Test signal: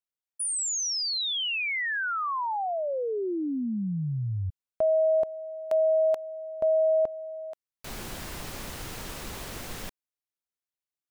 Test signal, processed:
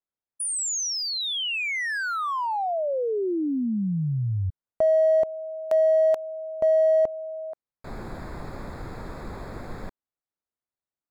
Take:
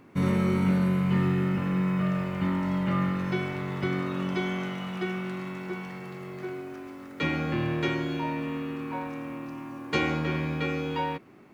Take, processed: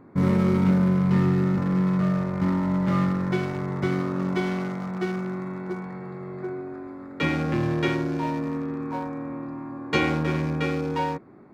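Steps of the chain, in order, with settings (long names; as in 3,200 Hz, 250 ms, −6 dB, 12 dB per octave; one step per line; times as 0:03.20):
adaptive Wiener filter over 15 samples
level +4 dB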